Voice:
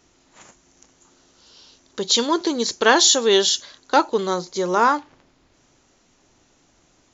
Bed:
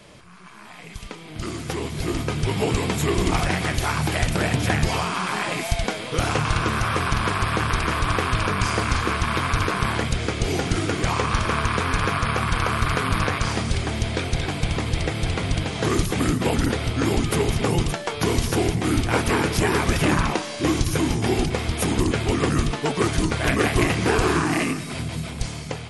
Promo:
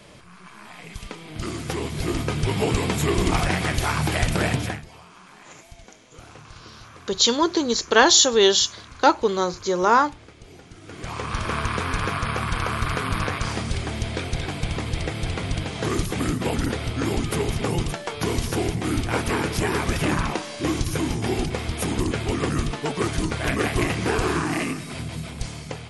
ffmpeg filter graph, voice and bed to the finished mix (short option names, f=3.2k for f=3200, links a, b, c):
-filter_complex "[0:a]adelay=5100,volume=0dB[a];[1:a]volume=19.5dB,afade=t=out:st=4.49:d=0.34:silence=0.0749894,afade=t=in:st=10.81:d=0.74:silence=0.105925[b];[a][b]amix=inputs=2:normalize=0"